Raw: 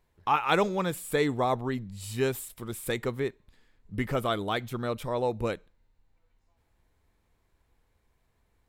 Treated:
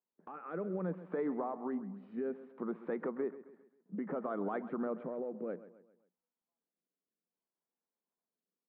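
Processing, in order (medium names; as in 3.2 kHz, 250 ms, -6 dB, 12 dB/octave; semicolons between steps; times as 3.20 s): low-pass 1.4 kHz 24 dB/octave; gate -60 dBFS, range -22 dB; Chebyshev high-pass 170 Hz, order 6; compression, threshold -33 dBFS, peak gain reduction 12 dB; peak limiter -30.5 dBFS, peak gain reduction 9 dB; rotary cabinet horn 0.6 Hz; feedback delay 133 ms, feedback 43%, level -15 dB; trim +4 dB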